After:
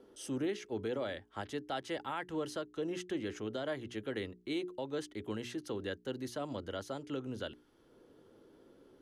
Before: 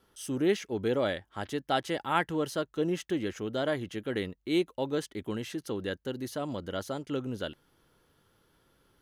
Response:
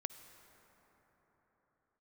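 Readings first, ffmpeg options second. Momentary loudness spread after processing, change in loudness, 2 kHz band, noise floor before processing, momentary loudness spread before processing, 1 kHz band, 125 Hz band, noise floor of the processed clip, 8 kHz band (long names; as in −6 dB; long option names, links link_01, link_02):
5 LU, −7.0 dB, −7.5 dB, −72 dBFS, 8 LU, −9.0 dB, −8.0 dB, −65 dBFS, −6.0 dB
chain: -filter_complex "[0:a]lowpass=9600,equalizer=frequency=170:width_type=o:width=0.34:gain=-6.5,bandreject=frequency=60:width_type=h:width=6,bandreject=frequency=120:width_type=h:width=6,bandreject=frequency=180:width_type=h:width=6,bandreject=frequency=240:width_type=h:width=6,bandreject=frequency=300:width_type=h:width=6,bandreject=frequency=360:width_type=h:width=6,bandreject=frequency=420:width_type=h:width=6,acrossover=split=230|490|1700[link_01][link_02][link_03][link_04];[link_02]acompressor=mode=upward:threshold=-41dB:ratio=2.5[link_05];[link_01][link_05][link_03][link_04]amix=inputs=4:normalize=0,alimiter=limit=-24dB:level=0:latency=1:release=231,volume=-3.5dB"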